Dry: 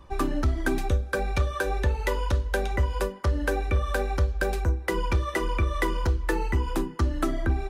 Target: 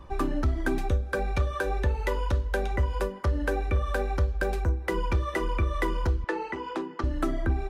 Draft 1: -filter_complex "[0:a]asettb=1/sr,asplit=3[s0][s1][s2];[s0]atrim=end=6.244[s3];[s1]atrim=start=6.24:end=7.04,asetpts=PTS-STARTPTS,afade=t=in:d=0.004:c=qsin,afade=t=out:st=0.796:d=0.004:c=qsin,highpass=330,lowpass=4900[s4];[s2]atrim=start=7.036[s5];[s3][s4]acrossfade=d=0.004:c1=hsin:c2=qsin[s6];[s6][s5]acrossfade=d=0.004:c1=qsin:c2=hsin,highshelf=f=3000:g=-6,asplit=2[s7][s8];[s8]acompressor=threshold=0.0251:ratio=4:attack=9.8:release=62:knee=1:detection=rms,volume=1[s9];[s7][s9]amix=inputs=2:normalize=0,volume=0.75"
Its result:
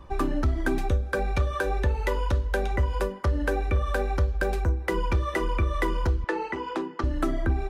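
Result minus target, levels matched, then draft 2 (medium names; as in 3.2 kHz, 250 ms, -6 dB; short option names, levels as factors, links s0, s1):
compression: peak gain reduction -7 dB
-filter_complex "[0:a]asettb=1/sr,asplit=3[s0][s1][s2];[s0]atrim=end=6.244[s3];[s1]atrim=start=6.24:end=7.04,asetpts=PTS-STARTPTS,afade=t=in:d=0.004:c=qsin,afade=t=out:st=0.796:d=0.004:c=qsin,highpass=330,lowpass=4900[s4];[s2]atrim=start=7.036[s5];[s3][s4]acrossfade=d=0.004:c1=hsin:c2=qsin[s6];[s6][s5]acrossfade=d=0.004:c1=qsin:c2=hsin,highshelf=f=3000:g=-6,asplit=2[s7][s8];[s8]acompressor=threshold=0.00841:ratio=4:attack=9.8:release=62:knee=1:detection=rms,volume=1[s9];[s7][s9]amix=inputs=2:normalize=0,volume=0.75"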